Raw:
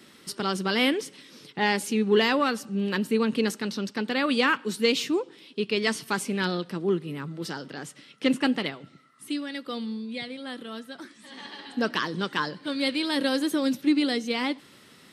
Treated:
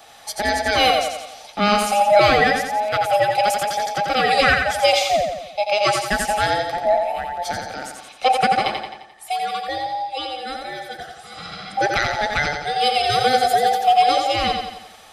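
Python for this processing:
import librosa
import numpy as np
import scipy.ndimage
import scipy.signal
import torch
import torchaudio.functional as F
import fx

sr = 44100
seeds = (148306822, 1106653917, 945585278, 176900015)

y = fx.band_invert(x, sr, width_hz=1000)
y = fx.high_shelf(y, sr, hz=12000.0, db=9.0, at=(3.25, 4.45))
y = fx.echo_feedback(y, sr, ms=87, feedback_pct=51, wet_db=-5.0)
y = y * librosa.db_to_amplitude(6.0)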